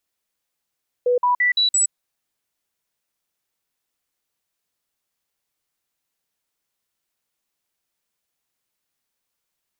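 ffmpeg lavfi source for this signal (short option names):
-f lavfi -i "aevalsrc='0.188*clip(min(mod(t,0.17),0.12-mod(t,0.17))/0.005,0,1)*sin(2*PI*492*pow(2,floor(t/0.17)/1)*mod(t,0.17))':d=0.85:s=44100"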